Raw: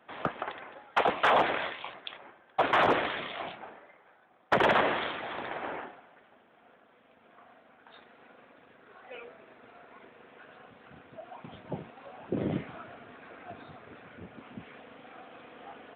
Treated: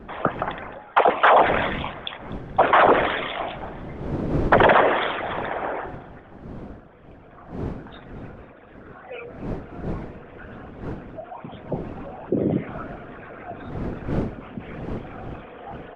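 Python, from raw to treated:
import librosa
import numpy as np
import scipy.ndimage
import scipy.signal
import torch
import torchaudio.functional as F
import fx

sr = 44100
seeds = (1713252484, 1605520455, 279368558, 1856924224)

p1 = fx.envelope_sharpen(x, sr, power=1.5)
p2 = fx.dmg_wind(p1, sr, seeds[0], corner_hz=300.0, level_db=-43.0)
p3 = fx.vibrato(p2, sr, rate_hz=1.4, depth_cents=7.5)
p4 = p3 + fx.echo_feedback(p3, sr, ms=247, feedback_pct=59, wet_db=-22.5, dry=0)
y = p4 * 10.0 ** (9.0 / 20.0)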